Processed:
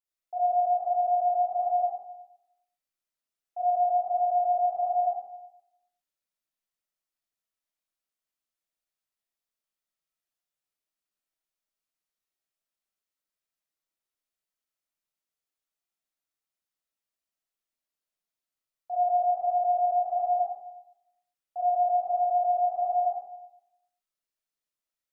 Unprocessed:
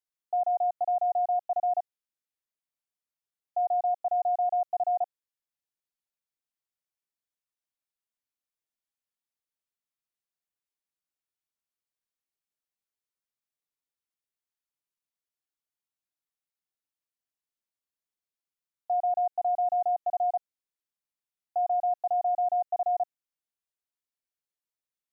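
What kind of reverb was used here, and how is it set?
algorithmic reverb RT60 0.85 s, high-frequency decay 0.95×, pre-delay 10 ms, DRR -10 dB; trim -8.5 dB

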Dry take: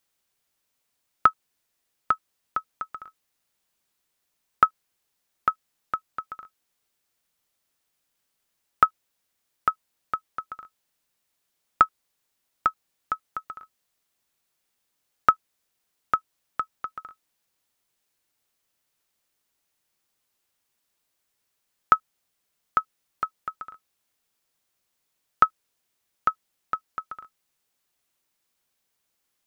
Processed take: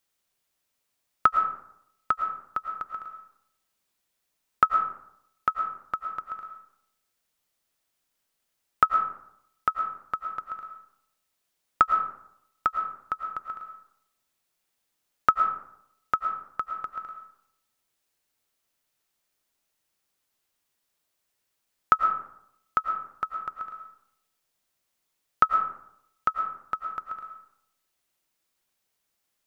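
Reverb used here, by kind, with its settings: algorithmic reverb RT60 0.76 s, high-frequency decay 0.5×, pre-delay 70 ms, DRR 5.5 dB; trim -2 dB

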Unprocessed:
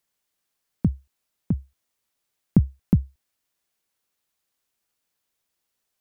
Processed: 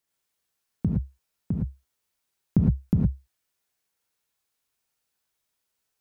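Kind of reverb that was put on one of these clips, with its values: gated-style reverb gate 130 ms rising, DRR -1.5 dB; trim -4.5 dB

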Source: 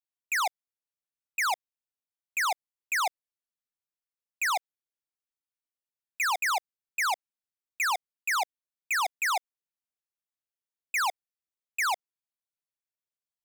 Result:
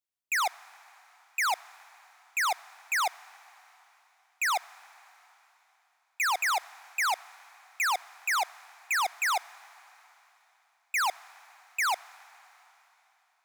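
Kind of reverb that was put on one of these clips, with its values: algorithmic reverb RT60 3.6 s, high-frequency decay 1×, pre-delay 15 ms, DRR 20 dB

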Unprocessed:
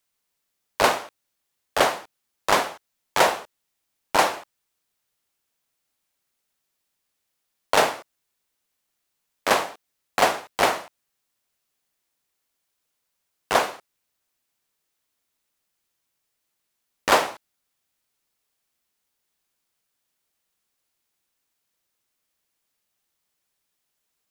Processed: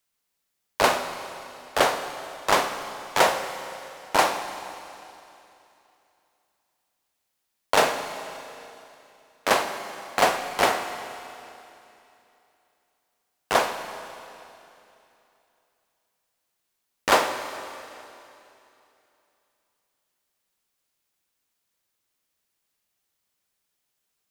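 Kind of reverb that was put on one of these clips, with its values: Schroeder reverb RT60 2.9 s, combs from 32 ms, DRR 8 dB; trim -1 dB

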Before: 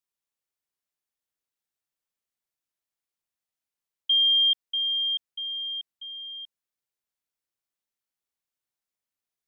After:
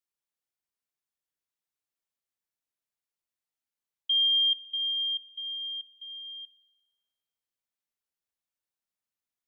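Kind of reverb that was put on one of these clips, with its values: spring tank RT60 1.3 s, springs 45 ms, chirp 20 ms, DRR 9.5 dB; trim -4 dB

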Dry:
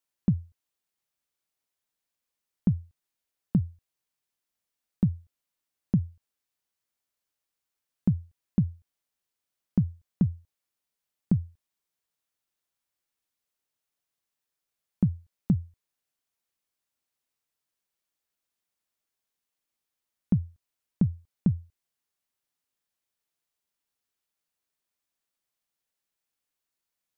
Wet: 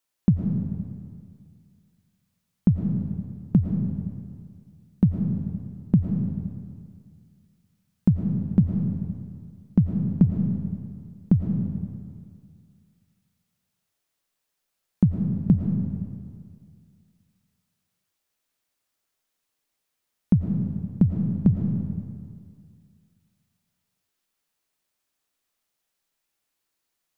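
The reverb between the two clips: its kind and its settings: algorithmic reverb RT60 2.1 s, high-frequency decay 0.8×, pre-delay 70 ms, DRR 2 dB; trim +5 dB

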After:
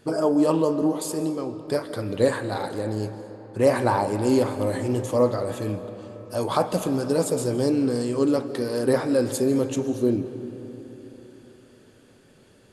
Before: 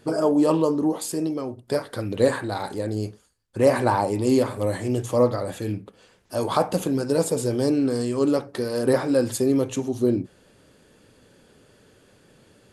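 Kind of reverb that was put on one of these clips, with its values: algorithmic reverb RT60 3.8 s, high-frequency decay 0.5×, pre-delay 105 ms, DRR 10.5 dB; trim -1 dB

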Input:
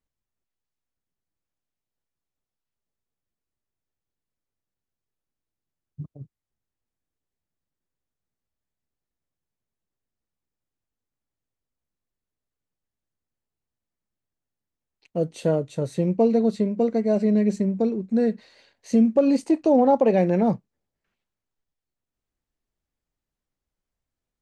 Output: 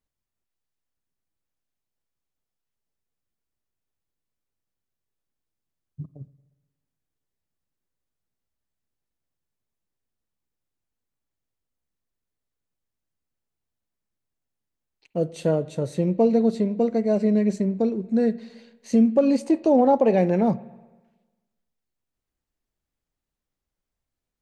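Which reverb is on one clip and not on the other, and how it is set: spring tank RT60 1.2 s, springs 44/59 ms, chirp 25 ms, DRR 17.5 dB

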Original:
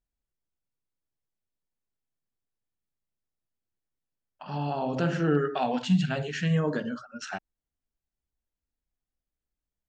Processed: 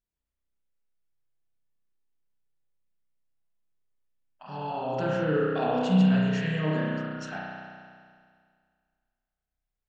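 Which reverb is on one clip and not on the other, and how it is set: spring tank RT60 2 s, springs 32 ms, chirp 40 ms, DRR -5 dB; trim -5.5 dB

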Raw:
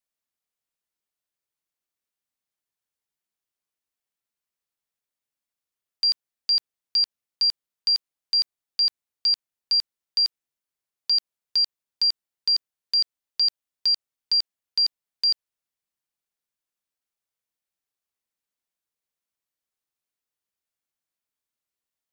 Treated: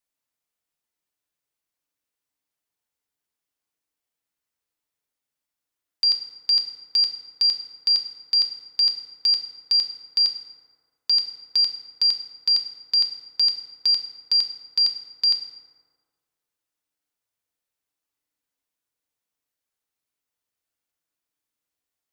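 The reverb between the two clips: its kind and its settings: FDN reverb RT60 1.7 s, low-frequency decay 0.85×, high-frequency decay 0.45×, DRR 3.5 dB; trim +1.5 dB

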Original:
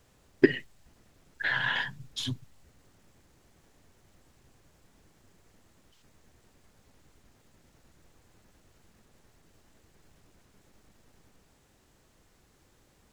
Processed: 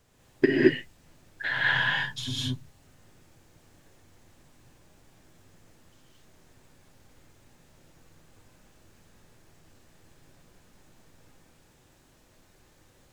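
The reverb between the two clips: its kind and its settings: gated-style reverb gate 250 ms rising, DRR -5 dB; trim -2 dB

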